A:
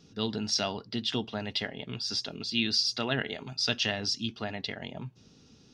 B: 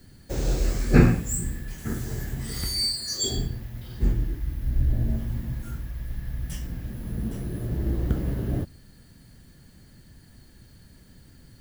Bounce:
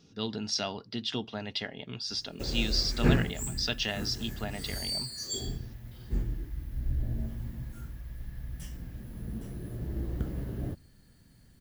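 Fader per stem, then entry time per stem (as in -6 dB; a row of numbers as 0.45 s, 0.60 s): -2.5 dB, -8.0 dB; 0.00 s, 2.10 s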